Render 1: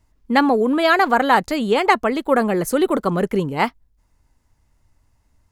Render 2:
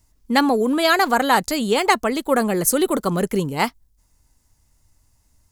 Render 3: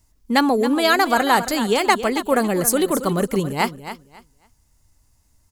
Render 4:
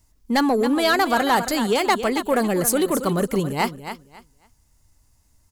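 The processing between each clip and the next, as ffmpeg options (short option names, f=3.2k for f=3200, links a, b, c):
-af "bass=f=250:g=2,treble=f=4k:g=13,volume=-2dB"
-af "aecho=1:1:273|546|819:0.251|0.0527|0.0111"
-af "asoftclip=type=tanh:threshold=-11dB"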